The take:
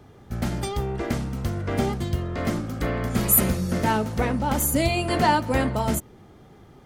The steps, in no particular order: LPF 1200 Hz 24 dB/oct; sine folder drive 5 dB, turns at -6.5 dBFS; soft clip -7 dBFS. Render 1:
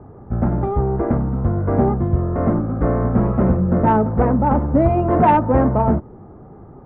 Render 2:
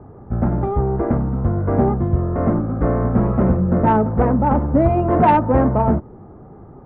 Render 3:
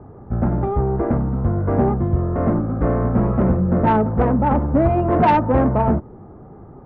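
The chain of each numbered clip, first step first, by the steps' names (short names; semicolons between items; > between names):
soft clip > LPF > sine folder; LPF > soft clip > sine folder; LPF > sine folder > soft clip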